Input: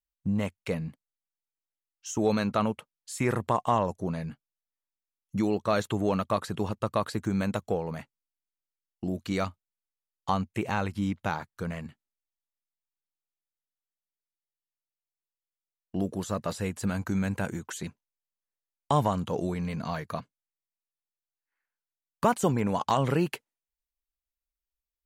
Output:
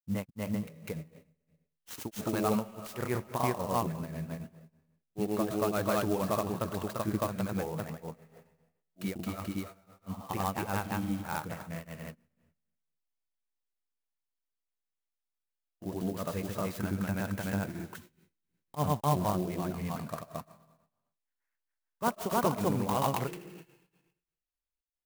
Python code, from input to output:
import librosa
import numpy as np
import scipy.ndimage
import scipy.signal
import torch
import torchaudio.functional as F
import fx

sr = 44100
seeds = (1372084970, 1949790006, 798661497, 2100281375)

y = fx.rev_freeverb(x, sr, rt60_s=0.89, hf_ratio=1.0, predelay_ms=55, drr_db=12.5)
y = fx.granulator(y, sr, seeds[0], grain_ms=163.0, per_s=20.0, spray_ms=309.0, spread_st=0)
y = fx.clock_jitter(y, sr, seeds[1], jitter_ms=0.042)